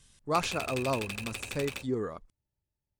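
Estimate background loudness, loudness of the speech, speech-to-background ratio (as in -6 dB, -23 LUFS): -38.0 LUFS, -33.5 LUFS, 4.5 dB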